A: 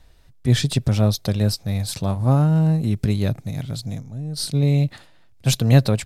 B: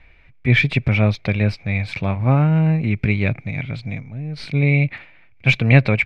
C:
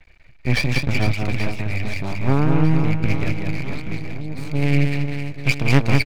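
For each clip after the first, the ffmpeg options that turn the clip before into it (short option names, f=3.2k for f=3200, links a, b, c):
-af "lowpass=f=2.3k:t=q:w=12,volume=1dB"
-filter_complex "[0:a]aeval=exprs='max(val(0),0)':c=same,asplit=2[a][b];[b]aecho=0:1:190|456|828.4|1350|2080:0.631|0.398|0.251|0.158|0.1[c];[a][c]amix=inputs=2:normalize=0"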